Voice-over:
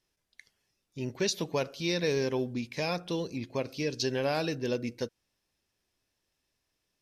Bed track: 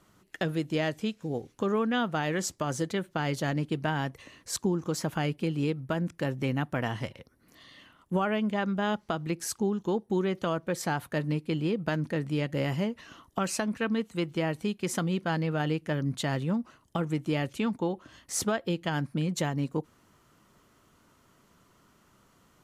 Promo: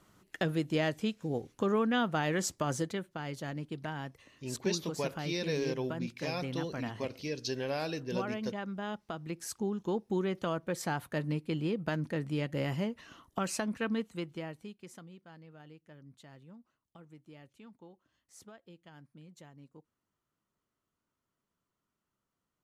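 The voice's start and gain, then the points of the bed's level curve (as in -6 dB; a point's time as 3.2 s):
3.45 s, -5.0 dB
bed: 2.74 s -1.5 dB
3.16 s -9.5 dB
9.03 s -9.5 dB
9.94 s -4 dB
13.98 s -4 dB
15.21 s -24.5 dB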